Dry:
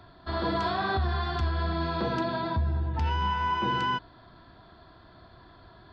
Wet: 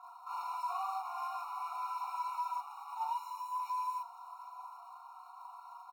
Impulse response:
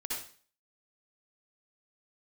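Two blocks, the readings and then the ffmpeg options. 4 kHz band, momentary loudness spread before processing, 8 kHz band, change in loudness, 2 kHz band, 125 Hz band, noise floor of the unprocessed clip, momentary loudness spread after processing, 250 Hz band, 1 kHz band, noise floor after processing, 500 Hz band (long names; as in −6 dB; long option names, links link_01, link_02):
−20.5 dB, 3 LU, can't be measured, −10.5 dB, −22.0 dB, below −40 dB, −54 dBFS, 14 LU, below −40 dB, −6.0 dB, −53 dBFS, −25.0 dB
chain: -filter_complex "[0:a]equalizer=frequency=960:width_type=o:width=0.54:gain=10.5,aeval=exprs='(tanh(56.2*val(0)+0.05)-tanh(0.05))/56.2':channel_layout=same,highshelf=frequency=1800:width_type=q:width=1.5:gain=-11,aecho=1:1:1.7:0.33,asplit=2[link_01][link_02];[link_02]acrusher=bits=2:mode=log:mix=0:aa=0.000001,volume=-9dB[link_03];[link_01][link_03]amix=inputs=2:normalize=0,aecho=1:1:777:0.15[link_04];[1:a]atrim=start_sample=2205,afade=type=out:start_time=0.14:duration=0.01,atrim=end_sample=6615,asetrate=83790,aresample=44100[link_05];[link_04][link_05]afir=irnorm=-1:irlink=0,afftfilt=real='re*eq(mod(floor(b*sr/1024/730),2),1)':imag='im*eq(mod(floor(b*sr/1024/730),2),1)':win_size=1024:overlap=0.75,volume=3dB"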